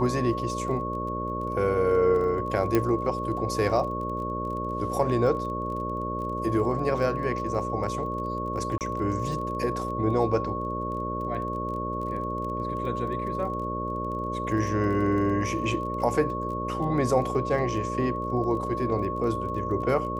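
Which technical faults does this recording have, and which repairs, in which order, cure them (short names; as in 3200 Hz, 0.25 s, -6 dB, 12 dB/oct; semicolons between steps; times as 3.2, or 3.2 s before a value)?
buzz 60 Hz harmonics 10 -33 dBFS
crackle 21/s -36 dBFS
tone 1100 Hz -31 dBFS
2.75 pop -10 dBFS
8.78–8.81 gap 28 ms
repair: de-click; de-hum 60 Hz, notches 10; notch 1100 Hz, Q 30; interpolate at 8.78, 28 ms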